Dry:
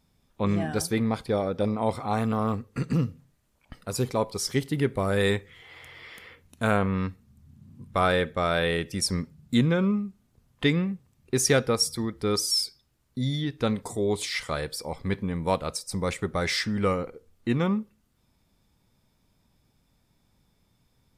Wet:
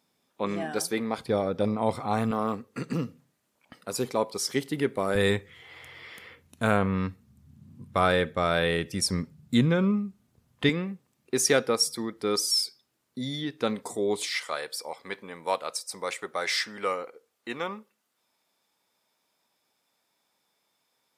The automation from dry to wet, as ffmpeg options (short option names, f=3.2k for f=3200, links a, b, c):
-af "asetnsamples=n=441:p=0,asendcmd='1.18 highpass f 100;2.31 highpass f 220;5.15 highpass f 80;10.69 highpass f 240;14.29 highpass f 550',highpass=290"